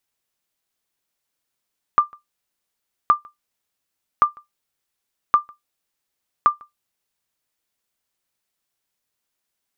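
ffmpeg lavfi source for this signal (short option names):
-f lavfi -i "aevalsrc='0.562*(sin(2*PI*1190*mod(t,1.12))*exp(-6.91*mod(t,1.12)/0.15)+0.0376*sin(2*PI*1190*max(mod(t,1.12)-0.15,0))*exp(-6.91*max(mod(t,1.12)-0.15,0)/0.15))':d=5.6:s=44100"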